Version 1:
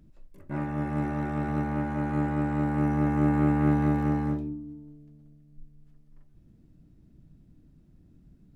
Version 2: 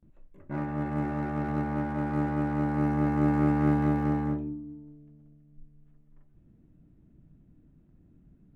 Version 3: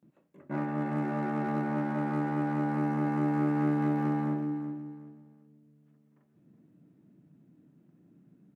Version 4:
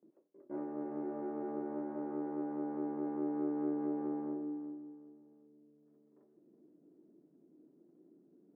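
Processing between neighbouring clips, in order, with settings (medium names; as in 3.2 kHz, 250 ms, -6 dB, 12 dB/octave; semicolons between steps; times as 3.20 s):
local Wiener filter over 9 samples; gate with hold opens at -51 dBFS; bass shelf 140 Hz -3.5 dB
compression 3:1, threshold -27 dBFS, peak gain reduction 6.5 dB; high-pass 150 Hz 24 dB/octave; on a send: feedback delay 371 ms, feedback 25%, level -11.5 dB; on the sum: trim +1.5 dB
reverse; upward compressor, threshold -45 dBFS; reverse; ladder band-pass 430 Hz, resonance 55%; trim +3.5 dB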